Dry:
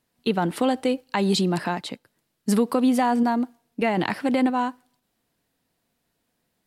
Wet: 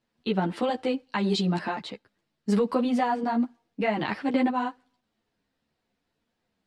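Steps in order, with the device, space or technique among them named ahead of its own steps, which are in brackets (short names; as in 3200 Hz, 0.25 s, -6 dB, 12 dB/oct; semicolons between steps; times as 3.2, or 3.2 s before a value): string-machine ensemble chorus (ensemble effect; LPF 5000 Hz 12 dB/oct)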